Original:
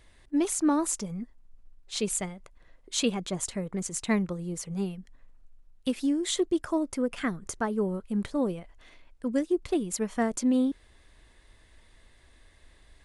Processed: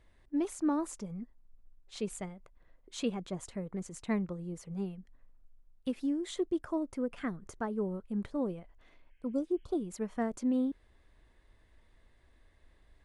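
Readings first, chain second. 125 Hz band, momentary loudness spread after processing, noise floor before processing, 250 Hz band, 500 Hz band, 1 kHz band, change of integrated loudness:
-5.5 dB, 11 LU, -59 dBFS, -5.5 dB, -6.0 dB, -7.0 dB, -6.5 dB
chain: spectral repair 9.08–9.76, 1500–3300 Hz both; high shelf 2600 Hz -11 dB; gain -5.5 dB

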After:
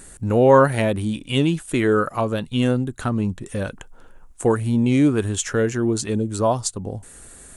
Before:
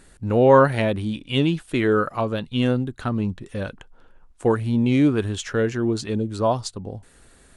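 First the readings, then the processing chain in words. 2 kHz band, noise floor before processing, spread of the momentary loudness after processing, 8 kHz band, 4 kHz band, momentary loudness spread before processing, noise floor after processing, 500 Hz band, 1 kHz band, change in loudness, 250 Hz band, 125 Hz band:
+1.0 dB, -53 dBFS, 13 LU, +10.0 dB, +0.5 dB, 15 LU, -45 dBFS, +1.0 dB, +1.0 dB, +1.0 dB, +1.5 dB, +1.5 dB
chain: resonant high shelf 5800 Hz +7.5 dB, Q 1.5; in parallel at -1 dB: compressor, threshold -33 dBFS, peak gain reduction 22 dB

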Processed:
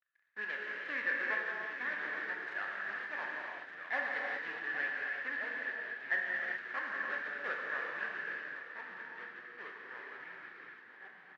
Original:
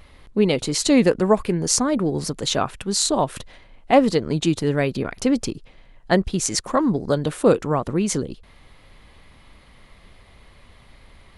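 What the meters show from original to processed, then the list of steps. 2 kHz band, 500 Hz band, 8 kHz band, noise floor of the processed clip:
+1.0 dB, -26.0 dB, under -40 dB, -56 dBFS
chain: CVSD 32 kbps; tilt -3 dB/oct; backlash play -21.5 dBFS; on a send: echo 0.817 s -12.5 dB; on the sum: non-linear reverb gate 0.43 s flat, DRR -2.5 dB; echoes that change speed 0.736 s, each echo -3 st, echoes 3, each echo -6 dB; ladder band-pass 1800 Hz, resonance 85%

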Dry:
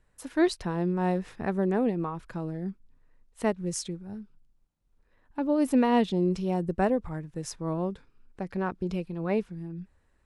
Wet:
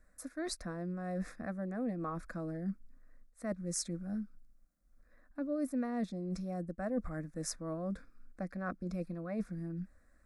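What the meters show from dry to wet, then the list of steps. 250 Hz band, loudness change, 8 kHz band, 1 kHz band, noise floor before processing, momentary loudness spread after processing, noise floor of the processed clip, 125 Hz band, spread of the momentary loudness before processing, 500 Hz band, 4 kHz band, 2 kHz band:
-9.5 dB, -10.5 dB, -2.0 dB, -13.0 dB, -67 dBFS, 7 LU, -66 dBFS, -8.0 dB, 15 LU, -12.0 dB, -7.0 dB, -9.5 dB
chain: reverse; compressor 12:1, threshold -34 dBFS, peak gain reduction 17 dB; reverse; fixed phaser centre 600 Hz, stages 8; gain +3.5 dB

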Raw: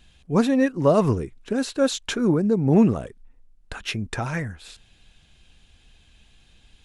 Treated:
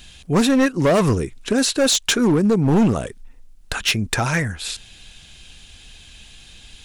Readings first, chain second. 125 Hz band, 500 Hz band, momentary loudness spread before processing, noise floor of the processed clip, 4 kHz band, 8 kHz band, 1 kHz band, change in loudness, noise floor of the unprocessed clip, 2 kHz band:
+3.5 dB, +2.0 dB, 12 LU, -46 dBFS, +11.5 dB, +13.0 dB, +4.5 dB, +3.5 dB, -58 dBFS, +8.5 dB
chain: high shelf 2400 Hz +10 dB; in parallel at -1 dB: compressor 5:1, threshold -30 dBFS, peak gain reduction 17 dB; on the sum: overloaded stage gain 15 dB; gain +3 dB

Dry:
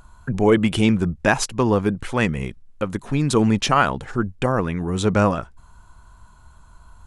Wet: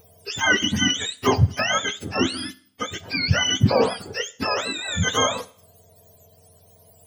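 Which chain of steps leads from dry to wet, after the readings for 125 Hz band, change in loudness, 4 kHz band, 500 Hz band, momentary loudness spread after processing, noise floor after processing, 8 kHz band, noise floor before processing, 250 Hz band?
-2.0 dB, -1.5 dB, +8.5 dB, -4.0 dB, 13 LU, -55 dBFS, +5.0 dB, -49 dBFS, -7.0 dB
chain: spectrum mirrored in octaves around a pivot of 810 Hz; Schroeder reverb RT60 0.57 s, combs from 27 ms, DRR 18 dB

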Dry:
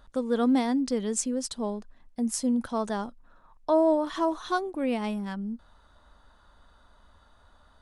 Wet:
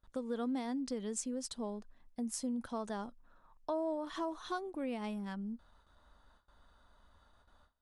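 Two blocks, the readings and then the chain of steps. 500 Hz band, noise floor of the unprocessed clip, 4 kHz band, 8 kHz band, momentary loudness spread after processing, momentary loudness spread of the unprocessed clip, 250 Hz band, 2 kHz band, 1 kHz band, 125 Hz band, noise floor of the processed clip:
-12.0 dB, -60 dBFS, -9.0 dB, -9.5 dB, 8 LU, 13 LU, -11.5 dB, -10.5 dB, -11.5 dB, n/a, -69 dBFS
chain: gate with hold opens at -48 dBFS; compressor 2.5:1, threshold -29 dBFS, peak gain reduction 7.5 dB; gain -7 dB

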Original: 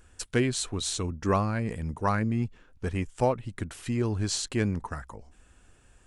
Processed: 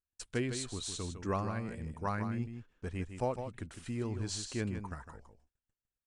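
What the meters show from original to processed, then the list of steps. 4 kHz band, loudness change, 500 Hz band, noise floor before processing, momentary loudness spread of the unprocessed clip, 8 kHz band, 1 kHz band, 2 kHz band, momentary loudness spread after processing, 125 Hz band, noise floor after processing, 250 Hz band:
-8.5 dB, -8.5 dB, -8.5 dB, -59 dBFS, 11 LU, -8.5 dB, -8.5 dB, -8.5 dB, 10 LU, -8.5 dB, under -85 dBFS, -8.5 dB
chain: gate -50 dBFS, range -33 dB; on a send: echo 0.156 s -8.5 dB; on the sum: downsampling 22050 Hz; gain -9 dB

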